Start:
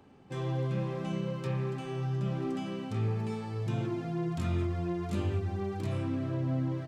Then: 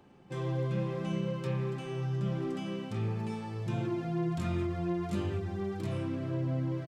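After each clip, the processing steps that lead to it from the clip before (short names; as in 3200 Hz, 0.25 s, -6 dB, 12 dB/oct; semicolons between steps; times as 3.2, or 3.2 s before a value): comb 5.7 ms, depth 31%; gain -1 dB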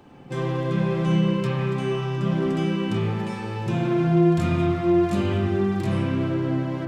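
spring tank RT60 1.5 s, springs 49/56/60 ms, chirp 45 ms, DRR -1.5 dB; gain +8.5 dB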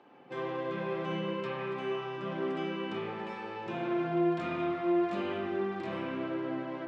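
BPF 370–3100 Hz; gain -5 dB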